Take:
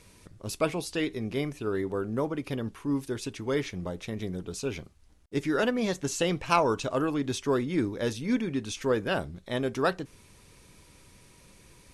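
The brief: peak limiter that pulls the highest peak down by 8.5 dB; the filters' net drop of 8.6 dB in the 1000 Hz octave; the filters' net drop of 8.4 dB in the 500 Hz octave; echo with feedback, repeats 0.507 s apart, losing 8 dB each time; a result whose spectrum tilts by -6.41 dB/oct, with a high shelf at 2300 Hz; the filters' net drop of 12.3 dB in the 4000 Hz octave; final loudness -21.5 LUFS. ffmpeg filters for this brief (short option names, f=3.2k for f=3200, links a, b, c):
-af "equalizer=f=500:t=o:g=-9,equalizer=f=1k:t=o:g=-6,highshelf=f=2.3k:g=-9,equalizer=f=4k:t=o:g=-8,alimiter=level_in=1.5dB:limit=-24dB:level=0:latency=1,volume=-1.5dB,aecho=1:1:507|1014|1521|2028|2535:0.398|0.159|0.0637|0.0255|0.0102,volume=15dB"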